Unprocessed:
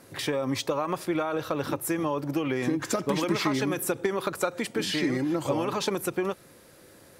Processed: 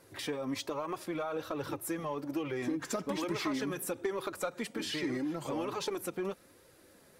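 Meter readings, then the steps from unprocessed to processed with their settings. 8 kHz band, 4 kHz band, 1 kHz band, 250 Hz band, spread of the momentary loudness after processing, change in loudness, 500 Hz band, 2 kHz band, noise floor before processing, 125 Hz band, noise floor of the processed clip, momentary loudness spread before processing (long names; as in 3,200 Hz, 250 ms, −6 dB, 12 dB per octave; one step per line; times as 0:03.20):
−7.5 dB, −7.5 dB, −8.0 dB, −7.5 dB, 4 LU, −7.5 dB, −7.5 dB, −8.0 dB, −54 dBFS, −10.5 dB, −61 dBFS, 4 LU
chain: in parallel at −6 dB: gain into a clipping stage and back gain 25 dB
on the sum: flanger 1.2 Hz, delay 1.9 ms, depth 3.1 ms, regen −29%
level −7 dB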